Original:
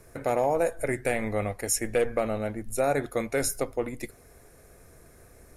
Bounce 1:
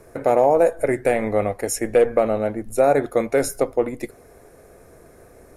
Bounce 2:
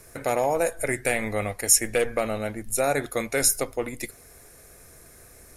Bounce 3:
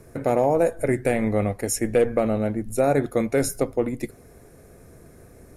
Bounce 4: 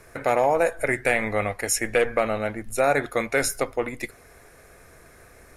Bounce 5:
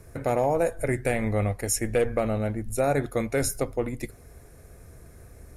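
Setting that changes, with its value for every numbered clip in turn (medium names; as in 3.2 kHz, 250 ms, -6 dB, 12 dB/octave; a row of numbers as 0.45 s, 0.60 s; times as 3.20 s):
peaking EQ, frequency: 510 Hz, 15 kHz, 200 Hz, 1.9 kHz, 68 Hz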